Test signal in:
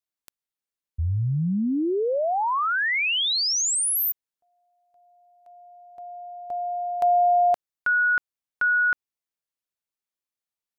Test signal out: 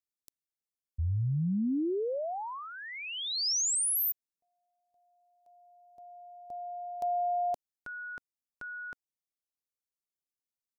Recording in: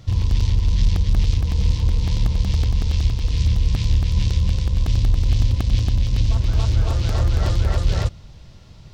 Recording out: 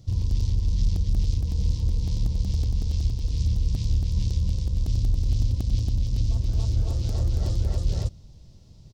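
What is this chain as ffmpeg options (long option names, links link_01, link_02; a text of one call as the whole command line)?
ffmpeg -i in.wav -af "firequalizer=gain_entry='entry(270,0);entry(1400,-15);entry(5100,0)':delay=0.05:min_phase=1,volume=-5.5dB" out.wav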